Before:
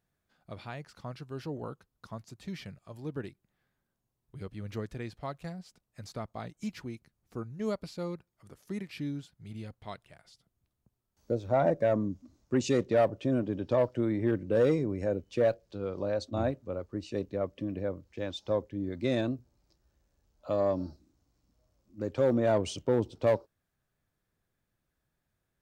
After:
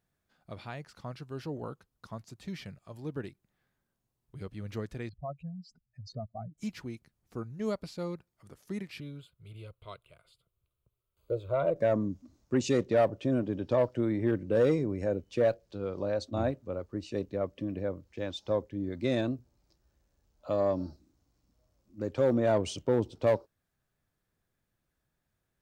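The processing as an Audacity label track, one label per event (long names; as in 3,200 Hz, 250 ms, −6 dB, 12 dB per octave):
5.090000	6.580000	expanding power law on the bin magnitudes exponent 2.9
9.000000	11.760000	phaser with its sweep stopped centre 1,200 Hz, stages 8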